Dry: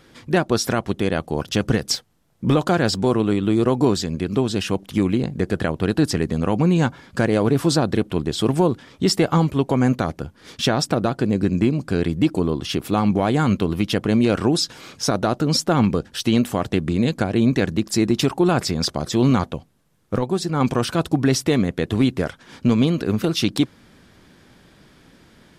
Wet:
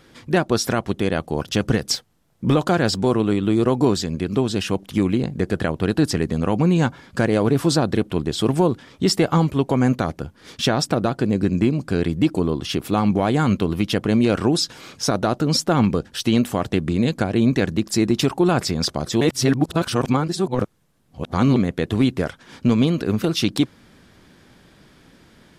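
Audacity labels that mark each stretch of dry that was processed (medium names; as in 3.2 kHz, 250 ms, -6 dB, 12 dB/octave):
19.210000	21.560000	reverse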